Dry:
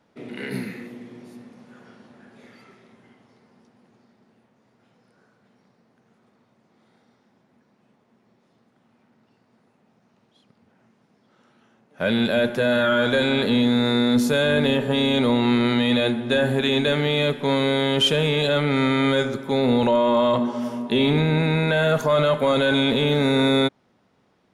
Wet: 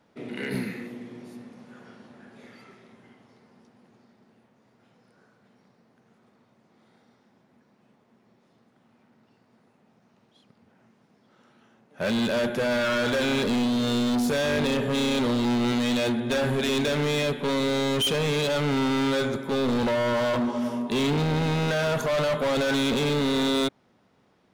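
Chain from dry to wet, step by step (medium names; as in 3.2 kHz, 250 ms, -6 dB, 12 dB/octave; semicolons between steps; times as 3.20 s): hard clipper -22 dBFS, distortion -8 dB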